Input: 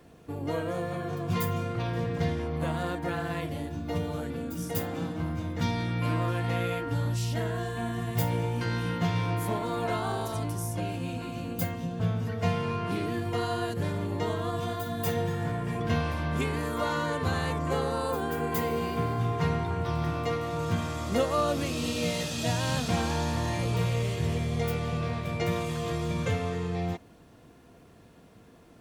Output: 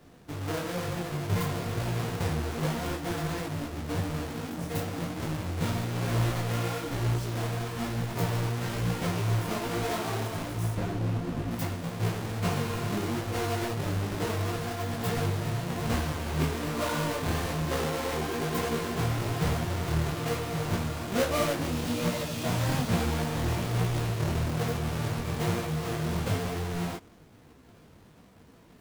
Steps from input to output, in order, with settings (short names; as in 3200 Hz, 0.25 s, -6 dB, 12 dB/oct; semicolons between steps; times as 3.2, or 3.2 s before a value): half-waves squared off; 10.77–11.51 tilt -2 dB/oct; detuned doubles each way 39 cents; gain -1.5 dB